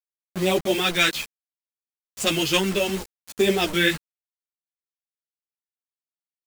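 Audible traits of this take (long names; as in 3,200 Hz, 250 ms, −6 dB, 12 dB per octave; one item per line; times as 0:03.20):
phaser sweep stages 2, 0.69 Hz, lowest notch 690–1,600 Hz
a quantiser's noise floor 6 bits, dither none
a shimmering, thickened sound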